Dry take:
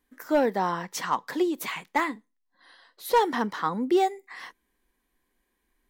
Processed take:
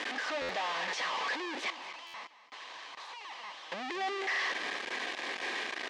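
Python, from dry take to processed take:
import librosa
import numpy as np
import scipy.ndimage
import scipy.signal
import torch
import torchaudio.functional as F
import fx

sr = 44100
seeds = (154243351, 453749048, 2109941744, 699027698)

y = np.sign(x) * np.sqrt(np.mean(np.square(x)))
y = fx.peak_eq(y, sr, hz=1000.0, db=-7.0, octaves=0.28)
y = fx.overflow_wrap(y, sr, gain_db=38.0, at=(1.7, 3.72))
y = fx.bandpass_edges(y, sr, low_hz=640.0, high_hz=5200.0)
y = fx.air_absorb(y, sr, metres=110.0)
y = fx.notch(y, sr, hz=1400.0, q=6.3)
y = fx.echo_feedback(y, sr, ms=227, feedback_pct=25, wet_db=-15)
y = fx.buffer_glitch(y, sr, at_s=(0.41, 2.06), block=512, repeats=6)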